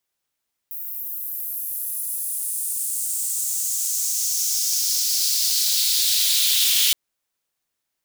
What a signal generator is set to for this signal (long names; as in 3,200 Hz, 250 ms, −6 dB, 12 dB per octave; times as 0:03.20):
filter sweep on noise white, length 6.22 s highpass, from 15,000 Hz, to 3,200 Hz, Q 2.8, exponential, gain ramp +13 dB